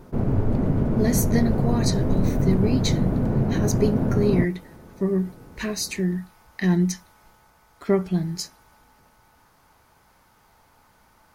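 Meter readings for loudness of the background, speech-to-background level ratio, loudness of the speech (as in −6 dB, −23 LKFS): −23.5 LKFS, −2.5 dB, −26.0 LKFS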